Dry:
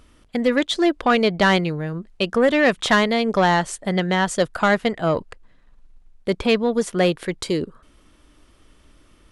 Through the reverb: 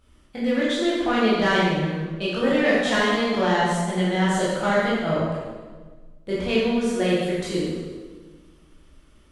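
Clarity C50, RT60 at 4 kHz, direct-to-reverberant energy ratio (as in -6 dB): -2.0 dB, 1.2 s, -9.0 dB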